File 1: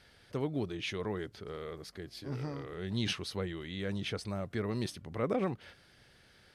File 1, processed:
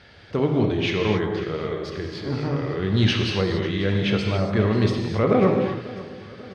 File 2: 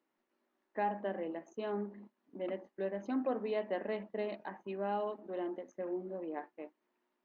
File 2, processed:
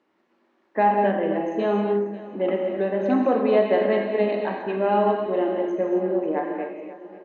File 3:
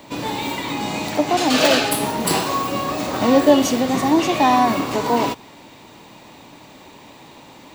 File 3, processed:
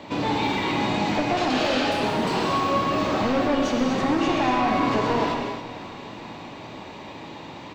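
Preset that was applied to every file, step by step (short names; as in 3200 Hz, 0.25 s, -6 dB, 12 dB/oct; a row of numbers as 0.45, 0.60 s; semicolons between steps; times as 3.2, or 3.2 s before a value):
HPF 43 Hz; high shelf 6600 Hz +6.5 dB; compressor 2:1, threshold -24 dBFS; hard clip -23.5 dBFS; air absorption 180 m; feedback echo 0.543 s, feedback 54%, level -17.5 dB; non-linear reverb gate 0.3 s flat, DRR 1 dB; match loudness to -23 LUFS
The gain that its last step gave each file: +12.0, +13.5, +3.0 dB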